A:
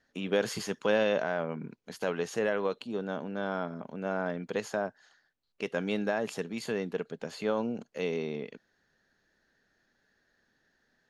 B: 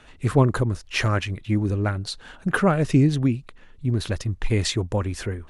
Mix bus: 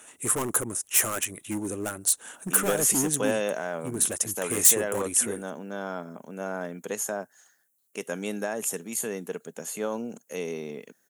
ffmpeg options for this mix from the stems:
-filter_complex "[0:a]highpass=150,adelay=2350,volume=0.944[s0];[1:a]highpass=280,volume=15.8,asoftclip=hard,volume=0.0631,volume=0.794[s1];[s0][s1]amix=inputs=2:normalize=0,highshelf=f=7000:g=-4,aexciter=amount=12.8:drive=8.6:freq=6900"

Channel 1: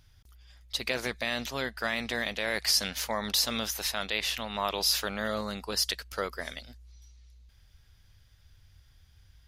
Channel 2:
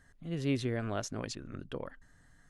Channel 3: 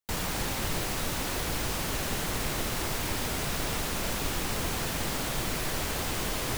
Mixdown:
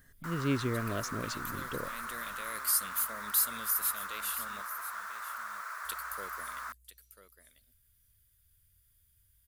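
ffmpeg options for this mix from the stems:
-filter_complex "[0:a]aexciter=amount=7.2:drive=8.7:freq=8000,volume=0.211,asplit=3[s0][s1][s2];[s0]atrim=end=4.62,asetpts=PTS-STARTPTS,afade=t=out:st=4.616:d=0.004:c=hsin[s3];[s1]atrim=start=4.62:end=5.85,asetpts=PTS-STARTPTS,volume=0[s4];[s2]atrim=start=5.85,asetpts=PTS-STARTPTS,afade=t=in:d=0.004:c=hsin[s5];[s3][s4][s5]concat=n=3:v=0:a=1,asplit=2[s6][s7];[s7]volume=0.224[s8];[1:a]volume=1.12,asplit=2[s9][s10];[2:a]highpass=f=980:w=0.5412,highpass=f=980:w=1.3066,highshelf=f=2000:t=q:w=3:g=-13.5,adelay=150,volume=0.668[s11];[s10]apad=whole_len=417980[s12];[s6][s12]sidechaincompress=threshold=0.0158:ratio=8:attack=16:release=588[s13];[s8]aecho=0:1:993:1[s14];[s13][s9][s11][s14]amix=inputs=4:normalize=0,equalizer=f=810:w=4.1:g=-12"

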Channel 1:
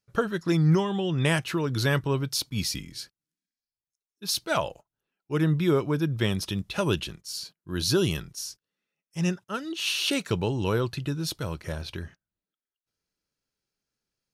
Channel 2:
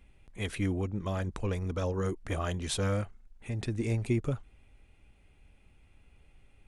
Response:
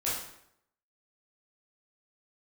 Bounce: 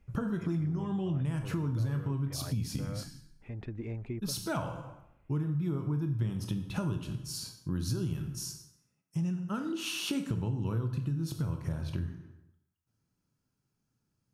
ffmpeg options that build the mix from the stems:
-filter_complex "[0:a]equalizer=f=125:t=o:w=1:g=12,equalizer=f=250:t=o:w=1:g=6,equalizer=f=500:t=o:w=1:g=-6,equalizer=f=1000:t=o:w=1:g=3,equalizer=f=2000:t=o:w=1:g=-6,equalizer=f=4000:t=o:w=1:g=-8,acompressor=threshold=0.0794:ratio=6,volume=1.19,asplit=2[s0][s1];[s1]volume=0.335[s2];[1:a]lowpass=2200,volume=0.531[s3];[2:a]atrim=start_sample=2205[s4];[s2][s4]afir=irnorm=-1:irlink=0[s5];[s0][s3][s5]amix=inputs=3:normalize=0,highshelf=f=7200:g=-4.5,acompressor=threshold=0.0178:ratio=2.5"

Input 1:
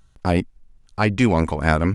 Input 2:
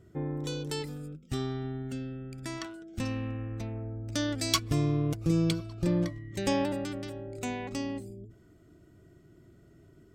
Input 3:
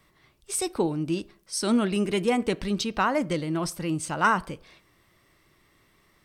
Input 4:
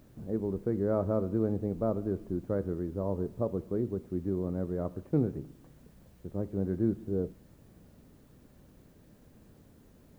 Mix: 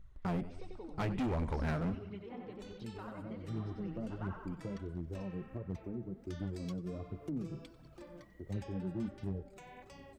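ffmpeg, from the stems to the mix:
-filter_complex "[0:a]lowshelf=f=160:g=7.5,acompressor=threshold=0.141:ratio=2.5,volume=0.473,asplit=3[s0][s1][s2];[s1]volume=0.133[s3];[1:a]highpass=650,acompressor=threshold=0.00794:ratio=4,adelay=2150,volume=0.631,asplit=2[s4][s5];[s5]volume=0.119[s6];[2:a]lowpass=f=4500:w=0.5412,lowpass=f=4500:w=1.3066,acompressor=threshold=0.0178:ratio=2.5,volume=0.251,asplit=2[s7][s8];[s8]volume=0.631[s9];[3:a]acrossover=split=210[s10][s11];[s11]acompressor=threshold=0.00891:ratio=10[s12];[s10][s12]amix=inputs=2:normalize=0,adelay=2150,volume=0.944[s13];[s2]apad=whole_len=544124[s14];[s13][s14]sidechaincompress=threshold=0.00891:ratio=8:attack=37:release=1480[s15];[s3][s6][s9]amix=inputs=3:normalize=0,aecho=0:1:93|186|279|372|465|558|651|744:1|0.56|0.314|0.176|0.0983|0.0551|0.0308|0.0173[s16];[s0][s4][s7][s15][s16]amix=inputs=5:normalize=0,flanger=delay=0.3:depth=6.4:regen=2:speed=1.4:shape=triangular,highshelf=f=2400:g=-10.5,volume=35.5,asoftclip=hard,volume=0.0282"

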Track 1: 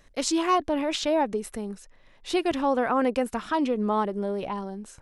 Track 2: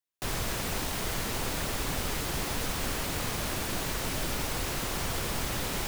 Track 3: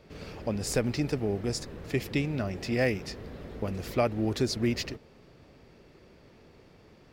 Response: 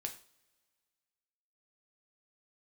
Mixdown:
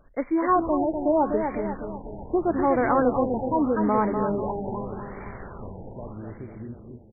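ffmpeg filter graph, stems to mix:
-filter_complex "[0:a]volume=1.12,asplit=3[s0][s1][s2];[s1]volume=0.141[s3];[s2]volume=0.531[s4];[1:a]acrusher=bits=4:mix=0:aa=0.000001,adelay=250,volume=0.316,asplit=3[s5][s6][s7];[s6]volume=0.422[s8];[s7]volume=0.562[s9];[2:a]equalizer=f=1900:w=0.48:g=-11,alimiter=level_in=1.12:limit=0.0631:level=0:latency=1,volume=0.891,adelay=2000,volume=0.355,asplit=3[s10][s11][s12];[s11]volume=0.596[s13];[s12]volume=0.631[s14];[3:a]atrim=start_sample=2205[s15];[s3][s8][s13]amix=inputs=3:normalize=0[s16];[s16][s15]afir=irnorm=-1:irlink=0[s17];[s4][s9][s14]amix=inputs=3:normalize=0,aecho=0:1:247|494|741|988|1235|1482|1729:1|0.51|0.26|0.133|0.0677|0.0345|0.0176[s18];[s0][s5][s10][s17][s18]amix=inputs=5:normalize=0,afftfilt=real='re*lt(b*sr/1024,940*pow(2400/940,0.5+0.5*sin(2*PI*0.81*pts/sr)))':imag='im*lt(b*sr/1024,940*pow(2400/940,0.5+0.5*sin(2*PI*0.81*pts/sr)))':win_size=1024:overlap=0.75"

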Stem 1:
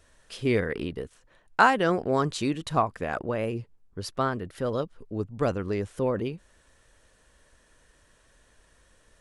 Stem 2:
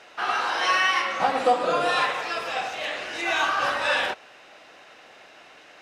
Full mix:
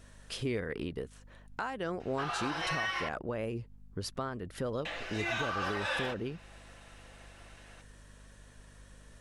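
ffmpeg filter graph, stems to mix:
-filter_complex "[0:a]acompressor=threshold=0.0112:ratio=2.5,volume=1.33[s0];[1:a]aecho=1:1:5.9:0.46,adelay=2000,volume=0.335,asplit=3[s1][s2][s3];[s1]atrim=end=3.09,asetpts=PTS-STARTPTS,afade=t=out:st=3.086:d=0.004:c=hsin[s4];[s2]atrim=start=3.09:end=4.85,asetpts=PTS-STARTPTS,volume=0[s5];[s3]atrim=start=4.85,asetpts=PTS-STARTPTS,afade=t=in:d=0.004:c=hsin[s6];[s4][s5][s6]concat=n=3:v=0:a=1[s7];[s0][s7]amix=inputs=2:normalize=0,aeval=exprs='val(0)+0.00178*(sin(2*PI*50*n/s)+sin(2*PI*2*50*n/s)/2+sin(2*PI*3*50*n/s)/3+sin(2*PI*4*50*n/s)/4+sin(2*PI*5*50*n/s)/5)':c=same,alimiter=limit=0.0668:level=0:latency=1:release=316"

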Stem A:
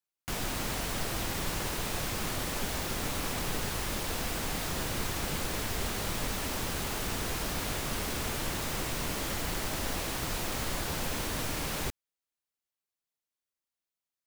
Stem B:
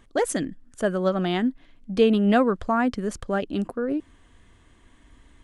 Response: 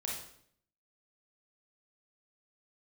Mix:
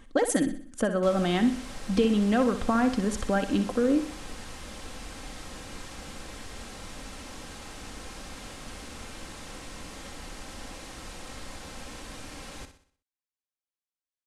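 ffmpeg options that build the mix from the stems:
-filter_complex "[0:a]lowpass=f=10000:w=0.5412,lowpass=f=10000:w=1.3066,adelay=750,volume=0.355,asplit=2[s0][s1];[s1]volume=0.299[s2];[1:a]acompressor=threshold=0.0631:ratio=6,volume=1.33,asplit=2[s3][s4];[s4]volume=0.299[s5];[s2][s5]amix=inputs=2:normalize=0,aecho=0:1:62|124|186|248|310|372:1|0.44|0.194|0.0852|0.0375|0.0165[s6];[s0][s3][s6]amix=inputs=3:normalize=0,aecho=1:1:3.8:0.39"

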